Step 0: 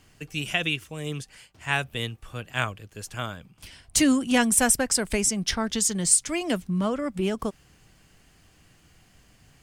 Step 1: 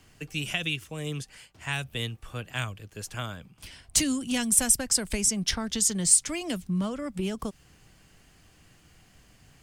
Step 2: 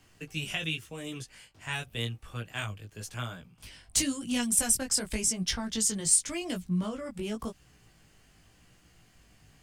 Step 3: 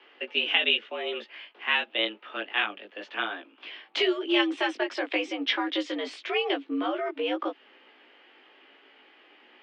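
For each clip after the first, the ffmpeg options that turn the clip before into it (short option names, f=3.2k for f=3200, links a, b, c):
-filter_complex "[0:a]acrossover=split=190|3000[a][b][c];[b]acompressor=threshold=-33dB:ratio=4[d];[a][d][c]amix=inputs=3:normalize=0"
-af "flanger=delay=16.5:depth=2.8:speed=0.91"
-af "highpass=f=210:t=q:w=0.5412,highpass=f=210:t=q:w=1.307,lowpass=f=3.1k:t=q:w=0.5176,lowpass=f=3.1k:t=q:w=0.7071,lowpass=f=3.1k:t=q:w=1.932,afreqshift=96,aemphasis=mode=production:type=bsi,volume=9dB"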